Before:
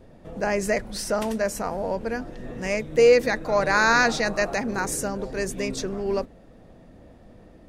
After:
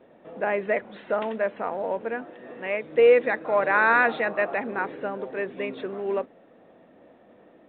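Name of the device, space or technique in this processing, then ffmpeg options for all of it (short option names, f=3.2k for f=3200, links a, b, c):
telephone: -filter_complex "[0:a]asettb=1/sr,asplit=3[a][b][c];[a]atrim=end=2.254[d];[b]atrim=start=2.25:end=2.84,asetpts=PTS-STARTPTS,afade=t=in:d=0.004:c=qsin,afade=t=out:st=0.586:d=0.004:c=qsin,lowshelf=f=190:g=-8.5[e];[c]atrim=start=2.836[f];[d][e]acrossfade=d=0.004:c1=hsin:c2=qsin[g];[g][f]acrossfade=d=0.004:c1=qsin:c2=hsin,highpass=310,lowpass=3.1k" -ar 8000 -c:a pcm_mulaw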